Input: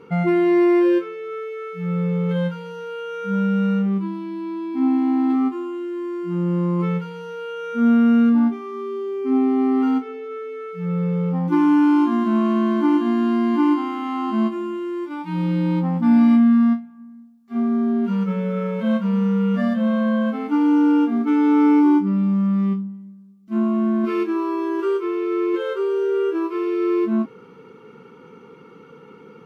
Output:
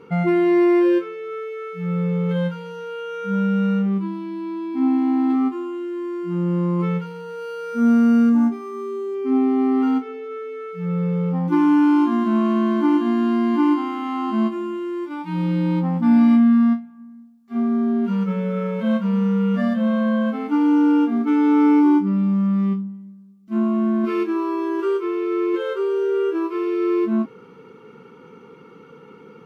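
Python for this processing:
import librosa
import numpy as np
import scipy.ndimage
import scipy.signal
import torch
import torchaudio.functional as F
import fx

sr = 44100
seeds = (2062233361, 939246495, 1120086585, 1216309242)

y = fx.resample_linear(x, sr, factor=6, at=(7.06, 9.15))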